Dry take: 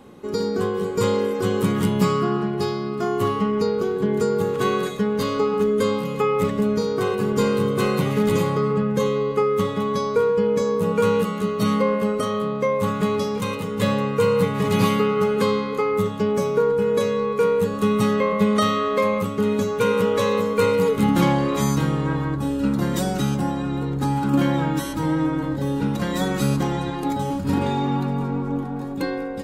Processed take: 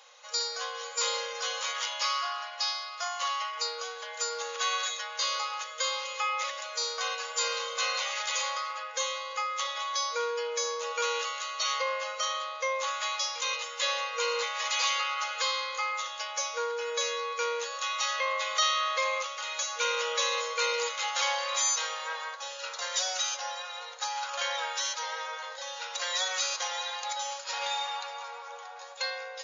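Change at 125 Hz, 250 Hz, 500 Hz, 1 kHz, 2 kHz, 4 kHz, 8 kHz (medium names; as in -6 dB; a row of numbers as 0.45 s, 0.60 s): under -40 dB, under -40 dB, -16.5 dB, -6.0 dB, -1.0 dB, +4.5 dB, +6.0 dB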